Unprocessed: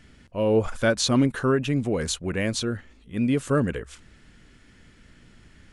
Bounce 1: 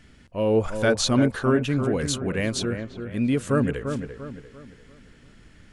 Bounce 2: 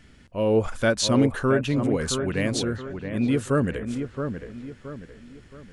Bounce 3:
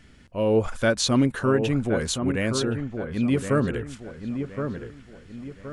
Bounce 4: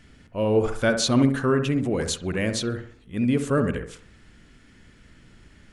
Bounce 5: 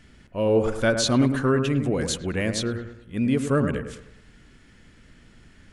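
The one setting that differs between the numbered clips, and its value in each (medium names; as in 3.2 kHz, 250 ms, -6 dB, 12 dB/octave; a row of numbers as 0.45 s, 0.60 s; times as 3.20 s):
feedback echo behind a low-pass, time: 345 ms, 672 ms, 1070 ms, 66 ms, 104 ms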